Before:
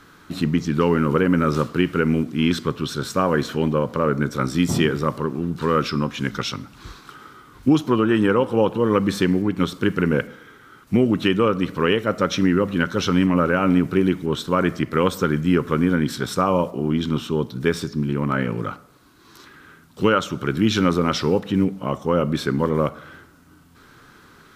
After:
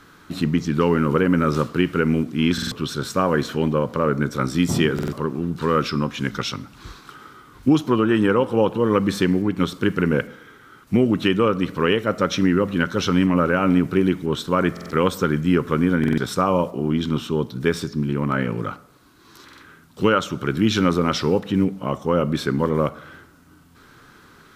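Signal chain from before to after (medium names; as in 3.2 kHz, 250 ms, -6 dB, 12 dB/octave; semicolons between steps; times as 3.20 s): buffer glitch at 2.53/4.94/14.72/15.99/19.44 s, samples 2048, times 3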